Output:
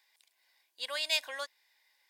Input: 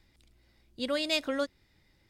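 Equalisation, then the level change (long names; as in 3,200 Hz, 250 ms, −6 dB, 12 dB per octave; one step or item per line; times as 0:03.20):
four-pole ladder high-pass 750 Hz, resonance 25%
Butterworth band-reject 1,300 Hz, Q 4.4
high-shelf EQ 10,000 Hz +10 dB
+5.0 dB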